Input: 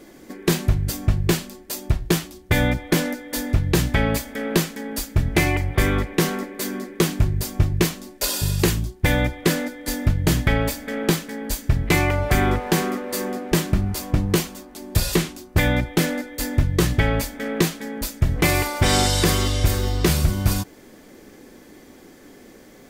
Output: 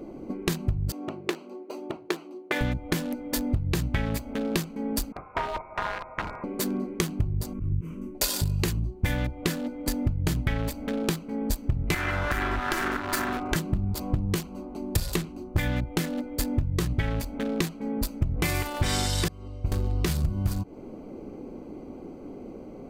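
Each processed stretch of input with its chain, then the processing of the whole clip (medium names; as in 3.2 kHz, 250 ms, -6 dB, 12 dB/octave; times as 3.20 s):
0.92–2.61 s: Chebyshev high-pass 320 Hz, order 3 + treble shelf 5.1 kHz -11 dB
5.12–6.44 s: CVSD coder 32 kbps + high-pass 960 Hz 24 dB/octave + frequency inversion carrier 3 kHz
7.53–8.15 s: slow attack 242 ms + static phaser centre 1.8 kHz, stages 4
11.94–13.56 s: comb filter that takes the minimum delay 3 ms + peaking EQ 1.5 kHz +13 dB 0.92 oct + compression 5:1, threshold -18 dBFS
19.28–19.72 s: expander -8 dBFS + transient shaper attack -3 dB, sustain +4 dB
whole clip: local Wiener filter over 25 samples; compression 6:1, threshold -29 dBFS; dynamic bell 510 Hz, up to -5 dB, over -44 dBFS, Q 0.75; trim +6.5 dB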